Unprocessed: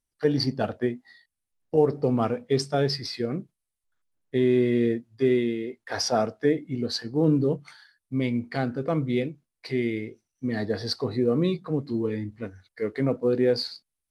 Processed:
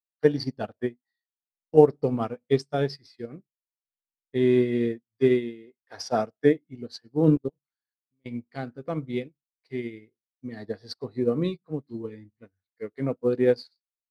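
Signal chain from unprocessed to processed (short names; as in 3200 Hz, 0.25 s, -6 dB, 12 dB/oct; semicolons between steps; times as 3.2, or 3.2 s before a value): 7.35–8.26 level quantiser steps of 22 dB; upward expander 2.5:1, over -42 dBFS; gain +6.5 dB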